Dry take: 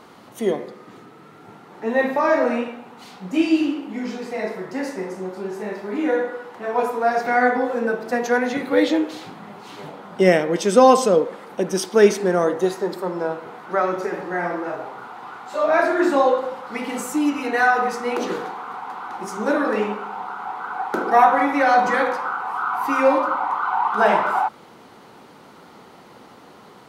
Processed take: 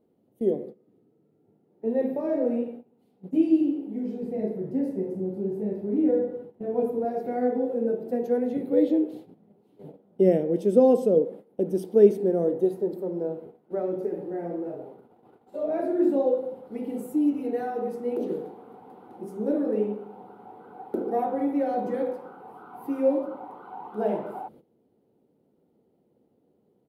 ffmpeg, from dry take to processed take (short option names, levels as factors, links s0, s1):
-filter_complex "[0:a]asettb=1/sr,asplit=3[s0][s1][s2];[s0]atrim=end=4.224[s3];[s1]atrim=start=4.22:end=7.05,asetpts=PTS-STARTPTS,afade=t=in:d=0.004:c=qsin,afade=t=out:st=2.826:d=0.004:c=qsin,bass=f=250:g=10,treble=f=4000:g=-2[s4];[s2]atrim=start=7.046[s5];[s3][s4]acrossfade=d=0.004:c1=hsin:c2=qsin[s6];[s6][s5]acrossfade=d=0.004:c1=qsin:c2=hsin,bandreject=f=60:t=h:w=6,bandreject=f=120:t=h:w=6,bandreject=f=180:t=h:w=6,agate=range=0.178:threshold=0.0178:ratio=16:detection=peak,firequalizer=gain_entry='entry(460,0);entry(1100,-26);entry(3000,-20);entry(6200,-26);entry(11000,-9)':delay=0.05:min_phase=1,volume=0.75"